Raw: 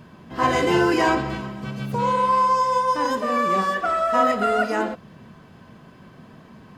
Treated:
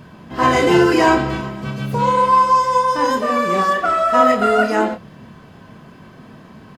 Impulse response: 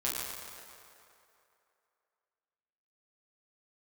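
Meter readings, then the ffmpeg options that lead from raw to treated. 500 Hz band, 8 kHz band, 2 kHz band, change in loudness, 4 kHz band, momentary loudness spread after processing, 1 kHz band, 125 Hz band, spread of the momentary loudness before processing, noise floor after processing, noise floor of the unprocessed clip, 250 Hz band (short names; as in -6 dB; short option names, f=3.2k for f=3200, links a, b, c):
+6.0 dB, +5.5 dB, +5.0 dB, +5.5 dB, +5.0 dB, 11 LU, +5.0 dB, +5.5 dB, 11 LU, -43 dBFS, -48 dBFS, +6.0 dB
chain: -filter_complex "[0:a]asplit=2[a][b];[b]adelay=28,volume=-7dB[c];[a][c]amix=inputs=2:normalize=0,volume=4.5dB"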